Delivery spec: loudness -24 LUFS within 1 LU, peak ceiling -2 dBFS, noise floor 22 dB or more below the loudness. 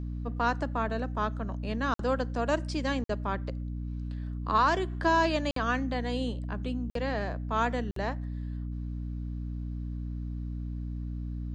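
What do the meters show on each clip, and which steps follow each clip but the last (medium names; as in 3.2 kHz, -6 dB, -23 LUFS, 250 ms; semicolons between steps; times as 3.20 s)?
dropouts 5; longest dropout 53 ms; hum 60 Hz; highest harmonic 300 Hz; hum level -33 dBFS; loudness -31.5 LUFS; peak level -12.5 dBFS; loudness target -24.0 LUFS
-> interpolate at 1.94/3.04/5.51/6.90/7.91 s, 53 ms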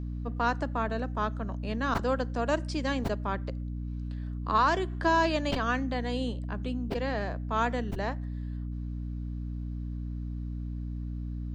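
dropouts 0; hum 60 Hz; highest harmonic 300 Hz; hum level -33 dBFS
-> hum notches 60/120/180/240/300 Hz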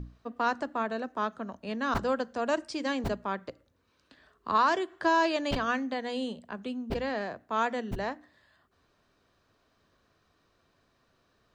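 hum not found; loudness -31.0 LUFS; peak level -13.5 dBFS; loudness target -24.0 LUFS
-> trim +7 dB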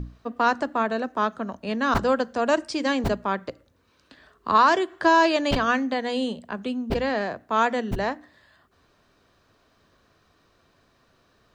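loudness -24.0 LUFS; peak level -6.5 dBFS; noise floor -64 dBFS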